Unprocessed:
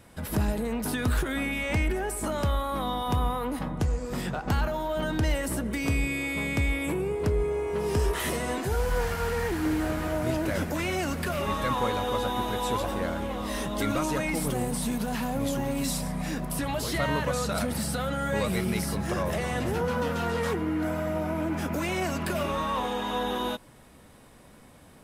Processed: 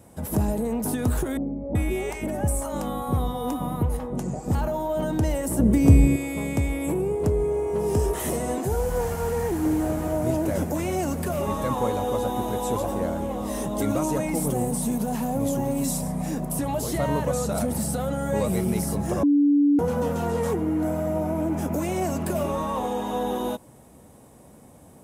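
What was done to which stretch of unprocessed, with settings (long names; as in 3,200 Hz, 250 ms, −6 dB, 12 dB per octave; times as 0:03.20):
0:01.37–0:04.55: multiband delay without the direct sound lows, highs 380 ms, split 680 Hz
0:05.59–0:06.16: low-shelf EQ 420 Hz +12 dB
0:19.23–0:19.79: beep over 288 Hz −19 dBFS
whole clip: high-pass filter 61 Hz; flat-topped bell 2,500 Hz −10.5 dB 2.3 octaves; notch filter 1,000 Hz, Q 28; level +4 dB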